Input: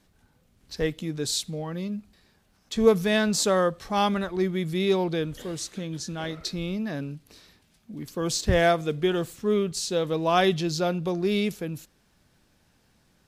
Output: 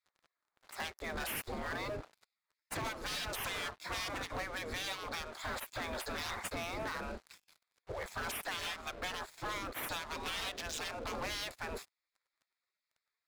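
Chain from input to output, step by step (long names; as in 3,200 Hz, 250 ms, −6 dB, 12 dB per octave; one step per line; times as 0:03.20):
adaptive Wiener filter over 15 samples
gate on every frequency bin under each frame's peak −25 dB weak
high-shelf EQ 12,000 Hz −10.5 dB
downward compressor 16 to 1, threshold −53 dBFS, peak gain reduction 20.5 dB
leveller curve on the samples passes 5
level +4 dB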